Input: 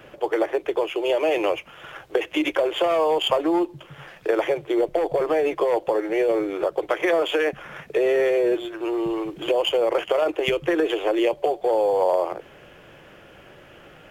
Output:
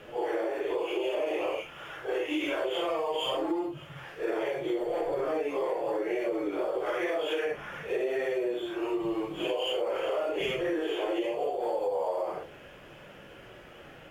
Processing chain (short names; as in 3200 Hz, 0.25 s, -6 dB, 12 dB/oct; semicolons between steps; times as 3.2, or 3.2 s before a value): phase scrambler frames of 0.2 s; in parallel at 0 dB: limiter -16 dBFS, peak gain reduction 8.5 dB; on the sum: compressor, threshold -19 dBFS, peak gain reduction 8.5 dB; gain -8 dB